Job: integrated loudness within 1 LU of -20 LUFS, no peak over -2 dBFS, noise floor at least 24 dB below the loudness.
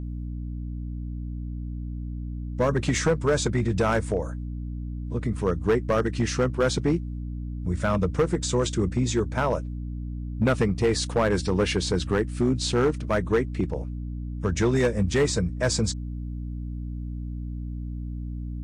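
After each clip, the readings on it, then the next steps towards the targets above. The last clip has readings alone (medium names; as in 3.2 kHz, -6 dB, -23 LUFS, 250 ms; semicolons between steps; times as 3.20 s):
clipped samples 1.2%; clipping level -15.5 dBFS; hum 60 Hz; highest harmonic 300 Hz; hum level -30 dBFS; loudness -26.5 LUFS; peak level -15.5 dBFS; loudness target -20.0 LUFS
-> clip repair -15.5 dBFS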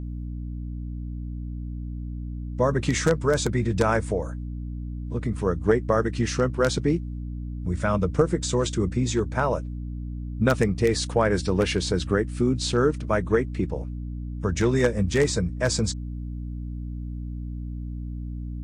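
clipped samples 0.0%; hum 60 Hz; highest harmonic 300 Hz; hum level -30 dBFS
-> hum notches 60/120/180/240/300 Hz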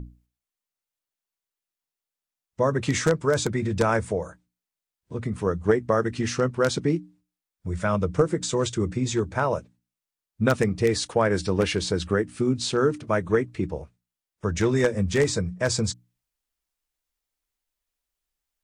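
hum not found; loudness -25.0 LUFS; peak level -5.5 dBFS; loudness target -20.0 LUFS
-> trim +5 dB; peak limiter -2 dBFS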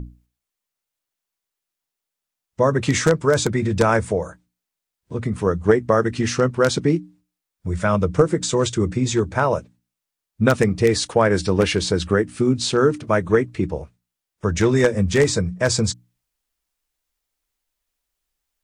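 loudness -20.0 LUFS; peak level -2.0 dBFS; noise floor -85 dBFS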